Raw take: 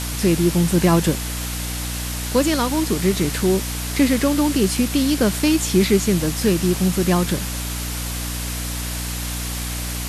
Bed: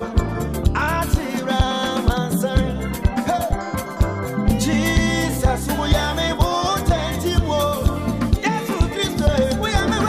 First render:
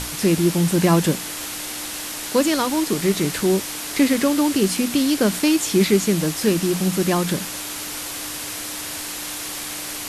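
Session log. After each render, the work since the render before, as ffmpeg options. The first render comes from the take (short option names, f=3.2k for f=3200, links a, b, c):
-af "bandreject=f=60:t=h:w=6,bandreject=f=120:t=h:w=6,bandreject=f=180:t=h:w=6,bandreject=f=240:t=h:w=6"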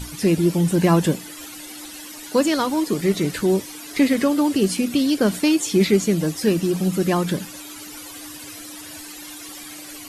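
-af "afftdn=nr=14:nf=-31"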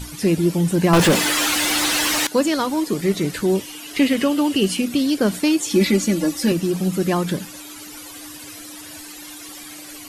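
-filter_complex "[0:a]asettb=1/sr,asplit=3[a][b][c];[a]atrim=end=0.934[d];[b]atrim=start=0.93:end=2.27,asetpts=PTS-STARTPTS,afade=t=in:d=0.004:c=qsin,afade=t=out:st=1.336:d=0.004:c=qsin,asplit=2[e][f];[f]highpass=f=720:p=1,volume=35dB,asoftclip=type=tanh:threshold=-7dB[g];[e][g]amix=inputs=2:normalize=0,lowpass=f=3.6k:p=1,volume=-6dB[h];[c]atrim=start=2.266[i];[d][h]acrossfade=d=0.004:c1=hsin:c2=qsin[j];[j][i]acrossfade=d=0.004:c1=qsin:c2=hsin,asettb=1/sr,asplit=3[k][l][m];[k]atrim=end=3.554[n];[l]atrim=start=3.55:end=4.82,asetpts=PTS-STARTPTS,afade=t=in:d=0.004:c=qsin,afade=t=out:st=1.266:d=0.004:c=qsin,equalizer=f=2.9k:t=o:w=0.26:g=11.5[o];[m]atrim=start=4.816[p];[n][o]acrossfade=d=0.004:c1=hsin:c2=qsin[q];[q][p]acrossfade=d=0.004:c1=qsin:c2=hsin,asettb=1/sr,asplit=3[r][s][t];[r]atrim=end=5.704[u];[s]atrim=start=5.7:end=6.52,asetpts=PTS-STARTPTS,afade=t=in:d=0.004:c=qsin,afade=t=out:st=0.816:d=0.004:c=qsin,aecho=1:1:3.5:0.86,atrim=end_sample=36162[v];[t]atrim=start=6.516[w];[u][v]acrossfade=d=0.004:c1=hsin:c2=qsin[x];[x][w]acrossfade=d=0.004:c1=qsin:c2=hsin"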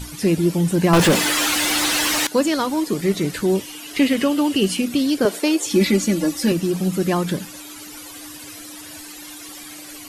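-filter_complex "[0:a]asettb=1/sr,asplit=3[a][b][c];[a]atrim=end=5.254[d];[b]atrim=start=5.25:end=5.66,asetpts=PTS-STARTPTS,afade=t=in:d=0.004:c=qsin,afade=t=out:st=0.406:d=0.004:c=qsin,highpass=f=440:t=q:w=2.3[e];[c]atrim=start=5.656[f];[d][e]acrossfade=d=0.004:c1=hsin:c2=qsin[g];[g][f]acrossfade=d=0.004:c1=qsin:c2=hsin"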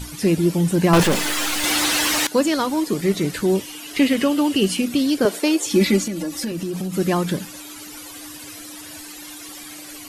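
-filter_complex "[0:a]asettb=1/sr,asplit=3[a][b][c];[a]atrim=end=1.034[d];[b]atrim=start=1.03:end=1.64,asetpts=PTS-STARTPTS,afade=t=in:d=0.004:c=qsin,afade=t=out:st=0.606:d=0.004:c=qsin,aeval=exprs='if(lt(val(0),0),0.251*val(0),val(0))':c=same[e];[c]atrim=start=1.636[f];[d][e]acrossfade=d=0.004:c1=hsin:c2=qsin[g];[g][f]acrossfade=d=0.004:c1=qsin:c2=hsin,asettb=1/sr,asplit=3[h][i][j];[h]atrim=end=6.024[k];[i]atrim=start=6.02:end=6.97,asetpts=PTS-STARTPTS,afade=t=in:d=0.004:c=qsin,afade=t=out:st=0.946:d=0.004:c=qsin,acompressor=threshold=-22dB:ratio=10:attack=3.2:release=140:knee=1:detection=peak[l];[j]atrim=start=6.966[m];[k][l]acrossfade=d=0.004:c1=hsin:c2=qsin[n];[n][m]acrossfade=d=0.004:c1=qsin:c2=hsin"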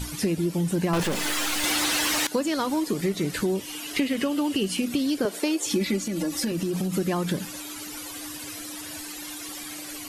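-af "acompressor=threshold=-22dB:ratio=6"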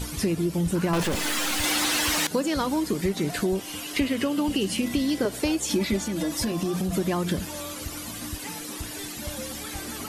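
-filter_complex "[1:a]volume=-20dB[a];[0:a][a]amix=inputs=2:normalize=0"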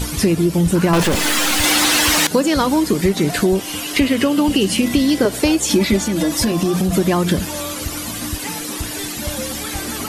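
-af "volume=9.5dB,alimiter=limit=-3dB:level=0:latency=1"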